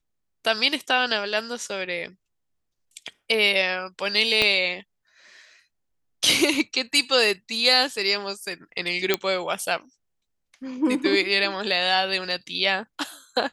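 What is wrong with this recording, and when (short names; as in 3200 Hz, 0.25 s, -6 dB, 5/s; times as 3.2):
4.42 pop -6 dBFS
9.14 pop -4 dBFS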